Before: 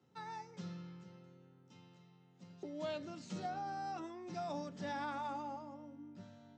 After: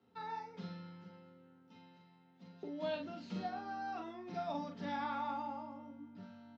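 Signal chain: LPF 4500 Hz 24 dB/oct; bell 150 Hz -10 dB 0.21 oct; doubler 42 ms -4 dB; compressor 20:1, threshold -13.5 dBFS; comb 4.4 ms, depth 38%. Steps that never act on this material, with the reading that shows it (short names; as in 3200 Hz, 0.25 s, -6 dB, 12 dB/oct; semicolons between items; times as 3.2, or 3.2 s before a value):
compressor, threshold -13.5 dBFS: input peak -28.0 dBFS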